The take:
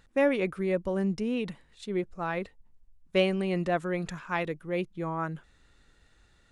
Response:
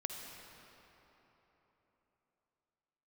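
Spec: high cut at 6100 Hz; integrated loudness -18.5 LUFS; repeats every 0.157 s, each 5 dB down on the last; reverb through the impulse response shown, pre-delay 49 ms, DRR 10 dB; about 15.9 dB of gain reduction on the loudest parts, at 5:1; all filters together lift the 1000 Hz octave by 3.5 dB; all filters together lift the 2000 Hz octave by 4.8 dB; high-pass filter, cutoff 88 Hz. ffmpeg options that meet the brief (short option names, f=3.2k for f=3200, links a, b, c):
-filter_complex "[0:a]highpass=88,lowpass=6.1k,equalizer=f=1k:t=o:g=3.5,equalizer=f=2k:t=o:g=5,acompressor=threshold=-37dB:ratio=5,aecho=1:1:157|314|471|628|785|942|1099:0.562|0.315|0.176|0.0988|0.0553|0.031|0.0173,asplit=2[a][b];[1:a]atrim=start_sample=2205,adelay=49[c];[b][c]afir=irnorm=-1:irlink=0,volume=-10dB[d];[a][d]amix=inputs=2:normalize=0,volume=20.5dB"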